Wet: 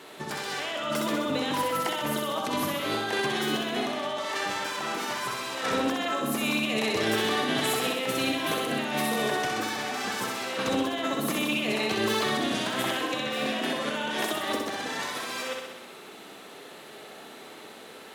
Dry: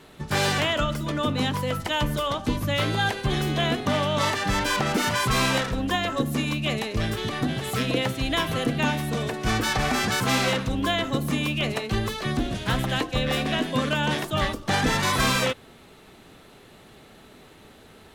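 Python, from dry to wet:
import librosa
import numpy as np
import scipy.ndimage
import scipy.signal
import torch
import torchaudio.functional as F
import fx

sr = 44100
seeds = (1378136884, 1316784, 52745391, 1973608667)

p1 = scipy.signal.sosfilt(scipy.signal.butter(2, 320.0, 'highpass', fs=sr, output='sos'), x)
p2 = fx.over_compress(p1, sr, threshold_db=-32.0, ratio=-1.0)
y = p2 + fx.room_flutter(p2, sr, wall_m=10.9, rt60_s=1.0, dry=0)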